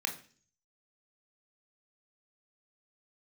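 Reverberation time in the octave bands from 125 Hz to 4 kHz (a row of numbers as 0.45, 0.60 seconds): 0.75, 0.60, 0.45, 0.40, 0.45, 0.55 seconds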